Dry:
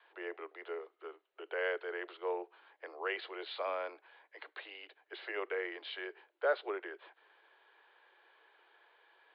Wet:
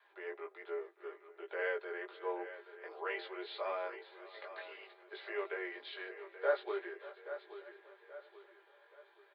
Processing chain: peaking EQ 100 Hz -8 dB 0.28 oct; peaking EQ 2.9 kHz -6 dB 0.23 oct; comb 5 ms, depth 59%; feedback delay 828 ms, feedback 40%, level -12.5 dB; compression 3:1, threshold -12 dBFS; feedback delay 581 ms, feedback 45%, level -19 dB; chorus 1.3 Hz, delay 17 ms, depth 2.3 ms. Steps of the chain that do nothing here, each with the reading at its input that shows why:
peaking EQ 100 Hz: input has nothing below 270 Hz; compression, threshold -12 dBFS: peak at its input -18.0 dBFS

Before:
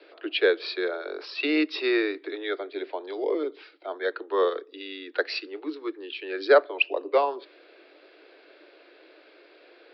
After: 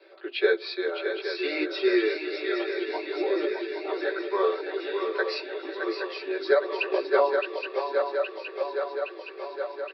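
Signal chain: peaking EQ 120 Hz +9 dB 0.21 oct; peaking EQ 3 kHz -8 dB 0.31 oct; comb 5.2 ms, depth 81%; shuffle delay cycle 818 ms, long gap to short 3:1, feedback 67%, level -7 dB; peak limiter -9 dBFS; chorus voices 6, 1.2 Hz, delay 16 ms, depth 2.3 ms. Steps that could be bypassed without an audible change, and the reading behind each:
peaking EQ 120 Hz: input has nothing below 250 Hz

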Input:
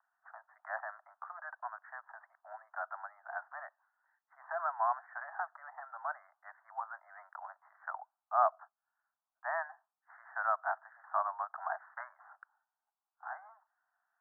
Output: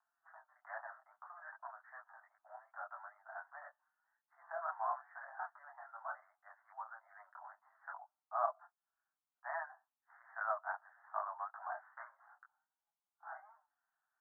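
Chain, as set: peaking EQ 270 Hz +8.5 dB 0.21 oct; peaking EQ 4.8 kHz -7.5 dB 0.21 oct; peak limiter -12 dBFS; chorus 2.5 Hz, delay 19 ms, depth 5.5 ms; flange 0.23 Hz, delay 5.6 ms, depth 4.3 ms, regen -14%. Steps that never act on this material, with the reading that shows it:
peaking EQ 270 Hz: input has nothing below 540 Hz; peaking EQ 4.8 kHz: input has nothing above 2 kHz; peak limiter -12 dBFS: peak at its input -14.5 dBFS

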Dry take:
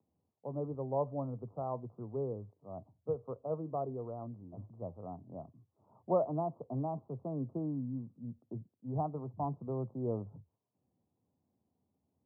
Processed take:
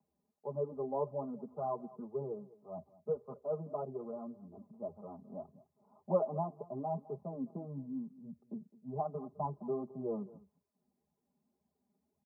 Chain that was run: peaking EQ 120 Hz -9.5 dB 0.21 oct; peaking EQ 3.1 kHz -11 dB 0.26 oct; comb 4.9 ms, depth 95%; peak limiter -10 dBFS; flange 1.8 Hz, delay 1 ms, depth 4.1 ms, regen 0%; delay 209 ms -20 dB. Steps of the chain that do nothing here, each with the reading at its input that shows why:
peaking EQ 3.1 kHz: input has nothing above 1.3 kHz; peak limiter -10 dBFS: peak at its input -16.5 dBFS

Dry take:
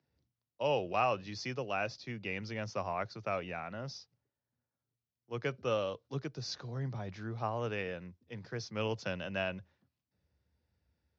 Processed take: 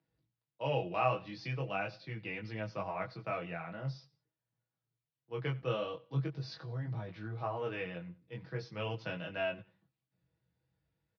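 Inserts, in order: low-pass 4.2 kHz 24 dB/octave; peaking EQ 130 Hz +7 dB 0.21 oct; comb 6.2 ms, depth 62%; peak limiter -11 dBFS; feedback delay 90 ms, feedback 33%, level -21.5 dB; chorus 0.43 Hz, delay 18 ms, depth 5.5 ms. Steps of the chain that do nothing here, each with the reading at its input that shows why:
peak limiter -11 dBFS: peak at its input -15.5 dBFS

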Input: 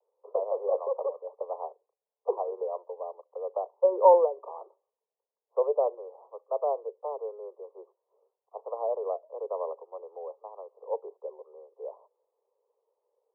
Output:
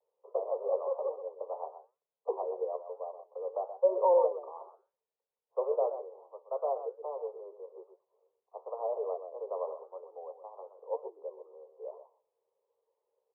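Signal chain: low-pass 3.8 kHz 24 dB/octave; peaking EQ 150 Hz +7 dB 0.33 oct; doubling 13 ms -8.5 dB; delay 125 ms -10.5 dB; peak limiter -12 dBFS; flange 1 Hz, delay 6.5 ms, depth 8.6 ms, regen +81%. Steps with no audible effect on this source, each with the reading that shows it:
low-pass 3.8 kHz: input has nothing above 1.1 kHz; peaking EQ 150 Hz: input has nothing below 340 Hz

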